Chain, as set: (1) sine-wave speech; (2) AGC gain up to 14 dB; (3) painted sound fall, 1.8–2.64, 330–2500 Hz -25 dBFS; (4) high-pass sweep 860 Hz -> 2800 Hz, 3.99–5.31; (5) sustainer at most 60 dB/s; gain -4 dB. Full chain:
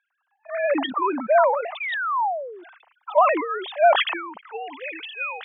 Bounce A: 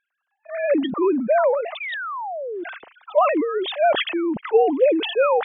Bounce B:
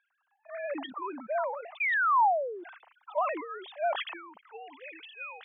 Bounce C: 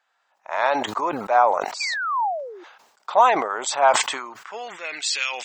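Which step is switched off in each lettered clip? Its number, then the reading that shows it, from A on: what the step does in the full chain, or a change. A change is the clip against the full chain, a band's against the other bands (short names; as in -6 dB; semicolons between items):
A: 4, 250 Hz band +10.5 dB; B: 2, momentary loudness spread change +6 LU; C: 1, 1 kHz band +5.0 dB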